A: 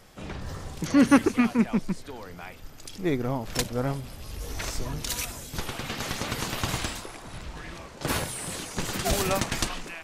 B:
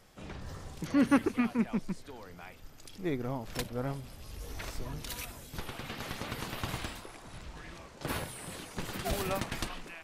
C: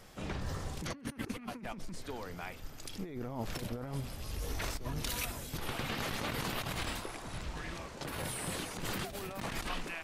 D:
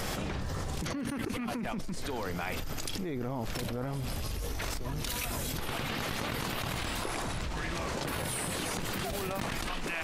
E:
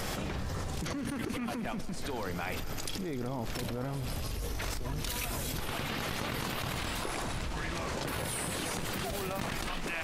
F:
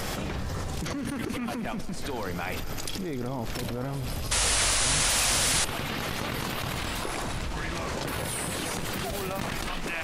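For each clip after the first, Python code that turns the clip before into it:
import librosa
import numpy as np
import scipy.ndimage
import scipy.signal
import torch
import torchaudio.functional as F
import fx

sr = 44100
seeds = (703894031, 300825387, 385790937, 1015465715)

y1 = fx.dynamic_eq(x, sr, hz=6700.0, q=1.2, threshold_db=-48.0, ratio=4.0, max_db=-7)
y1 = y1 * librosa.db_to_amplitude(-7.0)
y2 = fx.over_compress(y1, sr, threshold_db=-40.0, ratio=-1.0)
y2 = y2 * librosa.db_to_amplitude(1.0)
y3 = fx.env_flatten(y2, sr, amount_pct=100)
y4 = fx.echo_heads(y3, sr, ms=128, heads='all three', feedback_pct=43, wet_db=-20.0)
y4 = y4 * librosa.db_to_amplitude(-1.0)
y5 = fx.spec_paint(y4, sr, seeds[0], shape='noise', start_s=4.31, length_s=1.34, low_hz=480.0, high_hz=11000.0, level_db=-29.0)
y5 = y5 * librosa.db_to_amplitude(3.5)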